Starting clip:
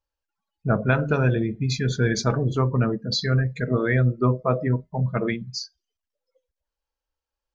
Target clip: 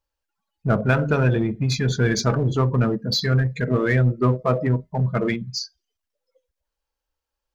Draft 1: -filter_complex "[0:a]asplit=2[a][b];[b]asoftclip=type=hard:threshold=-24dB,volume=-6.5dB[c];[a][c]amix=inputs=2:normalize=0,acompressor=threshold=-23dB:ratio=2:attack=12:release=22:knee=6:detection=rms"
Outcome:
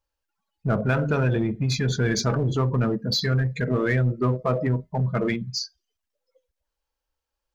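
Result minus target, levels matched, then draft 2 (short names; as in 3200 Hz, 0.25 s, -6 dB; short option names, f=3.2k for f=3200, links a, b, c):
compressor: peak gain reduction +5 dB
-filter_complex "[0:a]asplit=2[a][b];[b]asoftclip=type=hard:threshold=-24dB,volume=-6.5dB[c];[a][c]amix=inputs=2:normalize=0"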